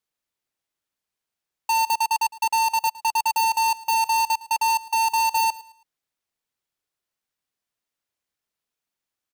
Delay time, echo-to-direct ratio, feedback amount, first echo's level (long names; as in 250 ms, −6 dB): 109 ms, −19.0 dB, 33%, −19.5 dB